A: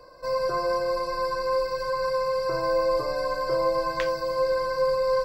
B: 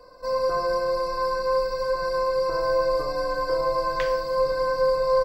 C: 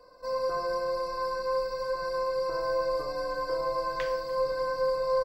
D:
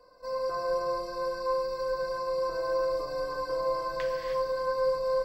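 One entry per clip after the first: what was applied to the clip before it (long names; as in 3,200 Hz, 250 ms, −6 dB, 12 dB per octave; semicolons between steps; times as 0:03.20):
slap from a distant wall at 250 metres, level −9 dB; rectangular room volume 2,400 cubic metres, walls furnished, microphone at 1.9 metres; level −1.5 dB
low-shelf EQ 120 Hz −4.5 dB; repeating echo 294 ms, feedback 51%, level −23.5 dB; level −5.5 dB
reverb whose tail is shaped and stops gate 340 ms rising, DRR 1 dB; level −3 dB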